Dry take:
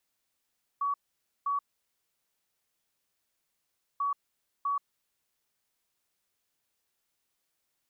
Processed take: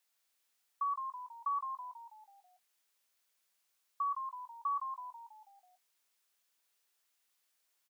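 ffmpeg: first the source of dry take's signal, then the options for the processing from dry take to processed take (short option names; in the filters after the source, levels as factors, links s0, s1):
-f lavfi -i "aevalsrc='0.0473*sin(2*PI*1130*t)*clip(min(mod(mod(t,3.19),0.65),0.13-mod(mod(t,3.19),0.65))/0.005,0,1)*lt(mod(t,3.19),1.3)':d=6.38:s=44100"
-filter_complex "[0:a]highpass=f=900:p=1,asplit=2[s0][s1];[s1]adelay=20,volume=0.237[s2];[s0][s2]amix=inputs=2:normalize=0,asplit=2[s3][s4];[s4]asplit=6[s5][s6][s7][s8][s9][s10];[s5]adelay=163,afreqshift=-67,volume=0.501[s11];[s6]adelay=326,afreqshift=-134,volume=0.26[s12];[s7]adelay=489,afreqshift=-201,volume=0.135[s13];[s8]adelay=652,afreqshift=-268,volume=0.0708[s14];[s9]adelay=815,afreqshift=-335,volume=0.0367[s15];[s10]adelay=978,afreqshift=-402,volume=0.0191[s16];[s11][s12][s13][s14][s15][s16]amix=inputs=6:normalize=0[s17];[s3][s17]amix=inputs=2:normalize=0"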